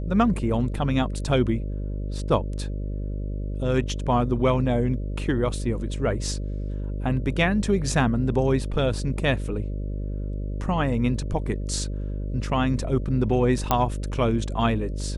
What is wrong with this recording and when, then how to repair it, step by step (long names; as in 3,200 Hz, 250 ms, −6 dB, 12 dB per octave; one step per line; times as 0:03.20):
mains buzz 50 Hz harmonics 12 −29 dBFS
0:13.71: click −6 dBFS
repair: click removal
hum removal 50 Hz, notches 12